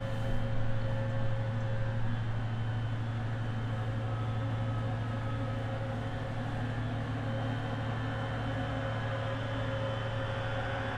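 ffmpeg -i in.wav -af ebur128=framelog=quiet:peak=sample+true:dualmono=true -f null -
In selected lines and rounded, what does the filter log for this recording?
Integrated loudness:
  I:         -31.8 LUFS
  Threshold: -41.8 LUFS
Loudness range:
  LRA:         0.9 LU
  Threshold: -51.9 LUFS
  LRA low:   -32.3 LUFS
  LRA high:  -31.5 LUFS
Sample peak:
  Peak:      -19.4 dBFS
True peak:
  Peak:      -19.4 dBFS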